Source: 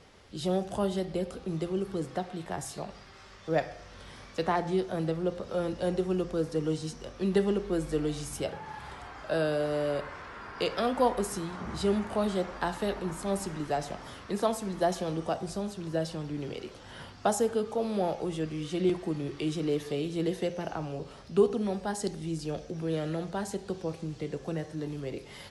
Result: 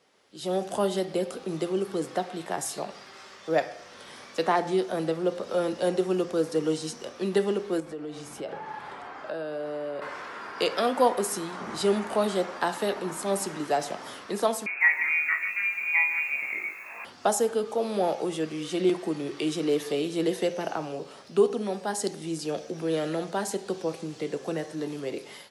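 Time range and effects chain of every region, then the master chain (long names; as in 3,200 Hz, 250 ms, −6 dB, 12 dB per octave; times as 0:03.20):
0:07.80–0:10.02: downward compressor 5 to 1, threshold −34 dBFS + low-pass filter 1,900 Hz 6 dB per octave
0:14.66–0:17.05: voice inversion scrambler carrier 2,600 Hz + flutter between parallel walls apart 3.3 metres, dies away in 0.24 s + feedback echo at a low word length 148 ms, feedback 35%, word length 9 bits, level −11.5 dB
whole clip: high-pass filter 260 Hz 12 dB per octave; high-shelf EQ 10,000 Hz +7 dB; automatic gain control gain up to 14 dB; level −8.5 dB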